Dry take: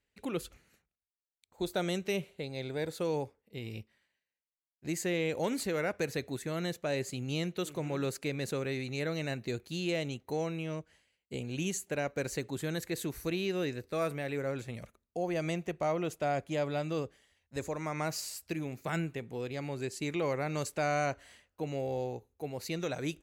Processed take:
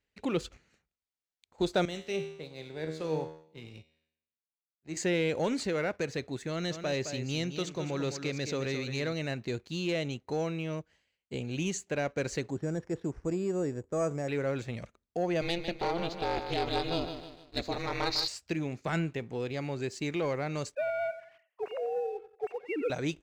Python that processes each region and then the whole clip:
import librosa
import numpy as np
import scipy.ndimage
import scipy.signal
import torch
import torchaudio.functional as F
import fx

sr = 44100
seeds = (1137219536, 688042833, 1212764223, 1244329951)

y = fx.chain(x, sr, fx.comb_fb(f0_hz=79.0, decay_s=0.95, harmonics='all', damping=0.0, mix_pct=80),
    fx.band_widen(depth_pct=40), at=(1.85, 4.97))
y = fx.chain(y, sr, fx.lowpass_res(hz=6000.0, q=2.1),
    fx.echo_single(ms=214, db=-9.5), at=(6.49, 9.13))
y = fx.chain(y, sr, fx.lowpass(hz=1100.0, slope=12),
    fx.resample_bad(factor=6, down='none', up='hold'), at=(12.5, 14.28))
y = fx.chain(y, sr, fx.lowpass_res(hz=4200.0, q=9.9),
    fx.ring_mod(carrier_hz=170.0),
    fx.echo_feedback(ms=153, feedback_pct=45, wet_db=-9.5), at=(15.41, 18.28))
y = fx.chain(y, sr, fx.sine_speech(),
    fx.echo_feedback(ms=90, feedback_pct=40, wet_db=-14), at=(20.75, 22.9))
y = scipy.signal.sosfilt(scipy.signal.butter(4, 7100.0, 'lowpass', fs=sr, output='sos'), y)
y = fx.leveller(y, sr, passes=1)
y = fx.rider(y, sr, range_db=10, speed_s=2.0)
y = y * librosa.db_to_amplitude(-1.5)